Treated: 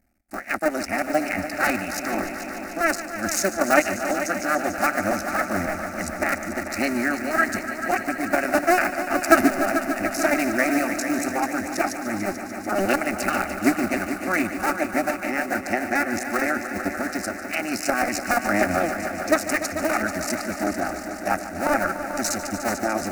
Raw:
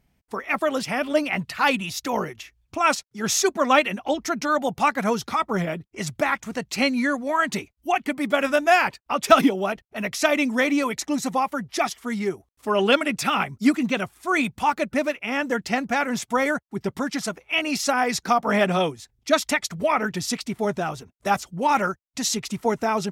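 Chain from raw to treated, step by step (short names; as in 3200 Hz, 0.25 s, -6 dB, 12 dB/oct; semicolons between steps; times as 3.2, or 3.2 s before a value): cycle switcher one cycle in 2, muted; fixed phaser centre 670 Hz, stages 8; multi-head echo 0.147 s, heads all three, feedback 72%, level -14 dB; gain +4 dB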